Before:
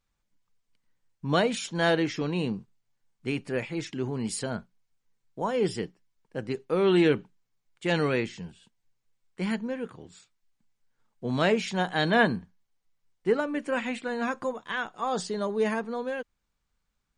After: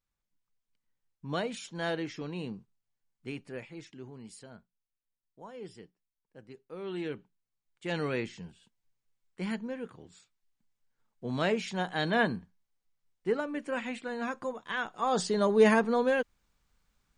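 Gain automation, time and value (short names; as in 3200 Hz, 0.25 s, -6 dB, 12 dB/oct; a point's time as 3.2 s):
3.28 s -9 dB
4.44 s -18 dB
6.64 s -18 dB
8.24 s -5 dB
14.43 s -5 dB
15.68 s +5.5 dB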